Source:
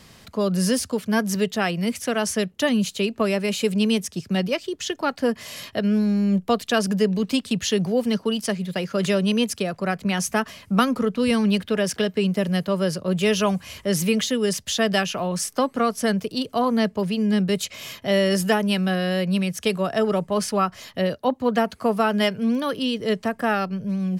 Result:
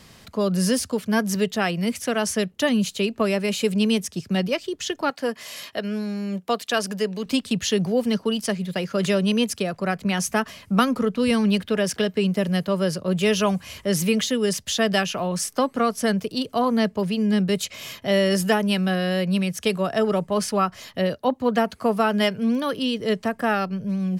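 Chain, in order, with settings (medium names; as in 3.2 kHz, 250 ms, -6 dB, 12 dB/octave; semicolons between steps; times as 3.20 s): 5.10–7.26 s: high-pass 470 Hz 6 dB/octave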